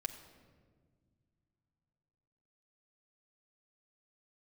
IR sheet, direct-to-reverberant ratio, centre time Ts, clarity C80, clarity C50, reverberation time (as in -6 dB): 3.0 dB, 18 ms, 11.0 dB, 10.0 dB, 1.7 s